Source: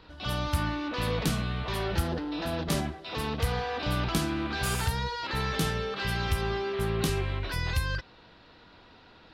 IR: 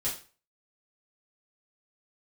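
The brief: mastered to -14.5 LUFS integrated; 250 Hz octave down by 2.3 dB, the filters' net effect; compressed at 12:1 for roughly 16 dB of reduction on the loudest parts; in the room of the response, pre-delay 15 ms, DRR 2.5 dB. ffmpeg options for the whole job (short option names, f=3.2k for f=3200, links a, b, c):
-filter_complex "[0:a]equalizer=f=250:t=o:g=-3.5,acompressor=threshold=-39dB:ratio=12,asplit=2[a][b];[1:a]atrim=start_sample=2205,adelay=15[c];[b][c]afir=irnorm=-1:irlink=0,volume=-7dB[d];[a][d]amix=inputs=2:normalize=0,volume=26dB"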